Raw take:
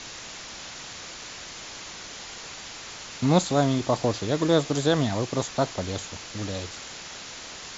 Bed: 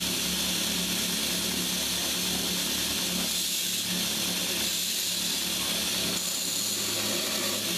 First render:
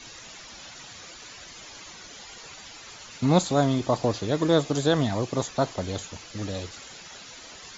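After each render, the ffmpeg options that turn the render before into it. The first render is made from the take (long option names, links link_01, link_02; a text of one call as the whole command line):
ffmpeg -i in.wav -af "afftdn=noise_reduction=11:noise_floor=-41" out.wav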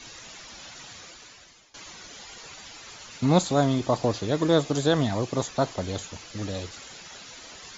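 ffmpeg -i in.wav -filter_complex "[0:a]asplit=2[link_01][link_02];[link_01]atrim=end=1.74,asetpts=PTS-STARTPTS,afade=type=out:start_time=0.93:duration=0.81:silence=0.0944061[link_03];[link_02]atrim=start=1.74,asetpts=PTS-STARTPTS,afade=type=in:duration=0.004:curve=hsin:silence=0.0944061[link_04];[link_03][link_04]concat=n=2:v=0:a=1" out.wav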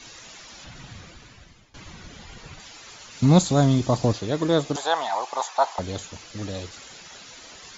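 ffmpeg -i in.wav -filter_complex "[0:a]asettb=1/sr,asplit=3[link_01][link_02][link_03];[link_01]atrim=end=0.644[link_04];[link_02]atrim=start=0.64:end=2.6,asetpts=PTS-STARTPTS,afade=type=in:duration=0.004:curve=qsin,afade=type=out:start_time=1.956:duration=0.004:curve=qsin,bass=frequency=250:gain=15,treble=frequency=4000:gain=-7[link_05];[link_03]atrim=start=2.596[link_06];[link_04][link_05]acrossfade=duration=0.004:curve1=hsin:curve2=qsin[link_07];[link_07][link_06]acrossfade=duration=0.004:curve1=qsin:curve2=hsin,asettb=1/sr,asplit=3[link_08][link_09][link_10];[link_08]atrim=end=3.174[link_11];[link_09]atrim=start=3.17:end=4.13,asetpts=PTS-STARTPTS,afade=type=in:duration=0.004:curve=qsin,afade=type=out:start_time=0.956:duration=0.004:curve=qsin,bass=frequency=250:gain=8,treble=frequency=4000:gain=5[link_12];[link_10]atrim=start=4.126[link_13];[link_11][link_12]acrossfade=duration=0.004:curve1=hsin:curve2=qsin[link_14];[link_14][link_13]acrossfade=duration=0.004:curve1=qsin:curve2=hsin,asettb=1/sr,asplit=3[link_15][link_16][link_17];[link_15]atrim=end=4.764[link_18];[link_16]atrim=start=4.76:end=5.79,asetpts=PTS-STARTPTS,afade=type=in:duration=0.004:curve=qsin,afade=type=out:start_time=1.026:duration=0.004:curve=qsin,highpass=frequency=850:width_type=q:width=4.8[link_19];[link_17]atrim=start=5.786[link_20];[link_18][link_19]acrossfade=duration=0.004:curve1=hsin:curve2=qsin[link_21];[link_21][link_20]acrossfade=duration=0.004:curve1=qsin:curve2=hsin" out.wav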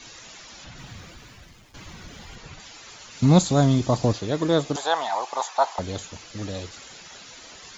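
ffmpeg -i in.wav -filter_complex "[0:a]asettb=1/sr,asplit=3[link_01][link_02][link_03];[link_01]atrim=end=0.784[link_04];[link_02]atrim=start=0.78:end=2.36,asetpts=PTS-STARTPTS,afade=type=in:duration=0.004:curve=qsin,afade=type=out:start_time=1.576:duration=0.004:curve=qsin,aeval=exprs='val(0)+0.5*0.00178*sgn(val(0))':channel_layout=same[link_05];[link_03]atrim=start=2.356[link_06];[link_04][link_05]acrossfade=duration=0.004:curve1=hsin:curve2=qsin[link_07];[link_07][link_06]acrossfade=duration=0.004:curve1=qsin:curve2=hsin" out.wav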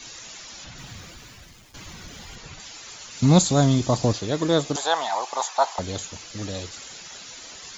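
ffmpeg -i in.wav -af "highshelf=frequency=4800:gain=8" out.wav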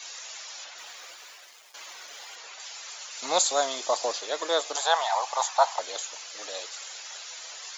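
ffmpeg -i in.wav -af "highpass=frequency=550:width=0.5412,highpass=frequency=550:width=1.3066" out.wav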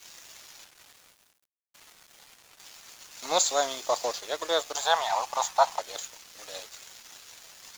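ffmpeg -i in.wav -af "acrusher=bits=8:mix=0:aa=0.000001,aeval=exprs='sgn(val(0))*max(abs(val(0))-0.00891,0)':channel_layout=same" out.wav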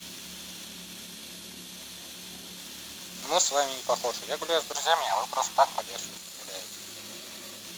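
ffmpeg -i in.wav -i bed.wav -filter_complex "[1:a]volume=-14.5dB[link_01];[0:a][link_01]amix=inputs=2:normalize=0" out.wav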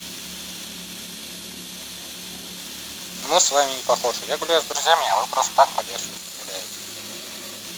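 ffmpeg -i in.wav -af "volume=7.5dB,alimiter=limit=-3dB:level=0:latency=1" out.wav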